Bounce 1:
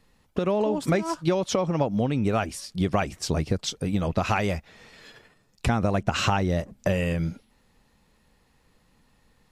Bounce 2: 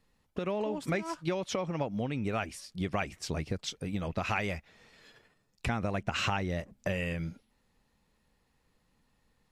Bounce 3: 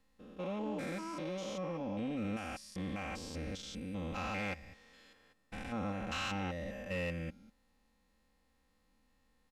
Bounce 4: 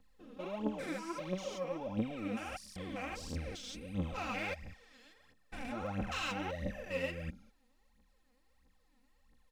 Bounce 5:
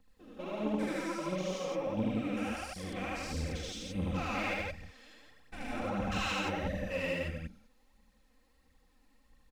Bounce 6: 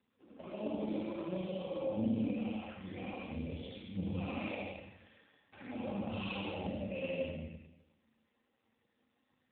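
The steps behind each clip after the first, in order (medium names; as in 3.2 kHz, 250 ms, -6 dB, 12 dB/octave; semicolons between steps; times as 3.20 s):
dynamic bell 2.2 kHz, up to +7 dB, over -45 dBFS, Q 1.3; trim -9 dB
spectrogram pixelated in time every 200 ms; comb 3.8 ms, depth 65%; saturation -26.5 dBFS, distortion -20 dB; trim -2.5 dB
phaser 1.5 Hz, delay 4.3 ms, feedback 73%; trim -3 dB
loudspeakers at several distances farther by 26 m -1 dB, 58 m -1 dB
touch-sensitive flanger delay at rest 10.1 ms, full sweep at -35 dBFS; Schroeder reverb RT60 0.93 s, combs from 28 ms, DRR 1 dB; trim -3 dB; AMR-NB 7.4 kbps 8 kHz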